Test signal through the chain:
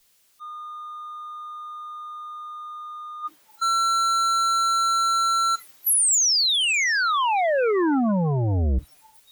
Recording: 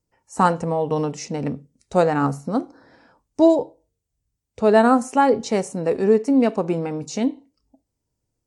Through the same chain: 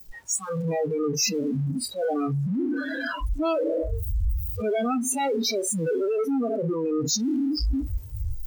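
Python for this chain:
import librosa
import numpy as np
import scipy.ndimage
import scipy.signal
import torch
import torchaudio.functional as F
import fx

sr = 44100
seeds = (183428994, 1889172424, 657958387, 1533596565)

y = np.sign(x) * np.sqrt(np.mean(np.square(x)))
y = fx.noise_reduce_blind(y, sr, reduce_db=30)
y = fx.band_widen(y, sr, depth_pct=40)
y = y * librosa.db_to_amplitude(-1.0)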